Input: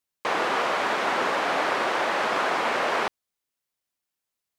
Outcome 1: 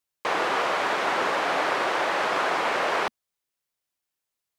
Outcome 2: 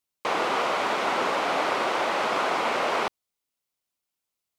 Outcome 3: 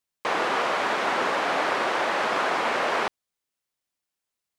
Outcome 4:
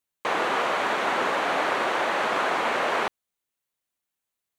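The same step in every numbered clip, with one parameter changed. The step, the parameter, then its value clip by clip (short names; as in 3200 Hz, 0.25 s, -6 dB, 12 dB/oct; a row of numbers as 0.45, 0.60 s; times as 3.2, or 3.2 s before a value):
bell, frequency: 230, 1700, 14000, 5100 Hz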